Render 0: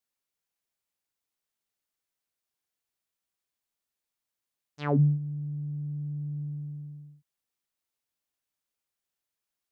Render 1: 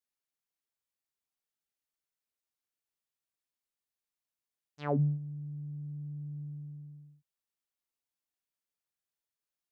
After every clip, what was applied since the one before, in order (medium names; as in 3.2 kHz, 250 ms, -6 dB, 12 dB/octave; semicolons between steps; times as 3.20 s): dynamic bell 620 Hz, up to +6 dB, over -46 dBFS, Q 1.4; trim -6.5 dB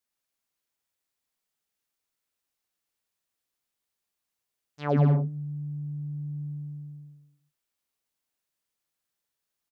bouncing-ball echo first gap 110 ms, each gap 0.7×, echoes 5; trim +5 dB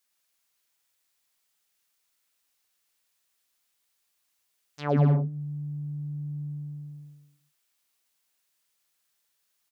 tape noise reduction on one side only encoder only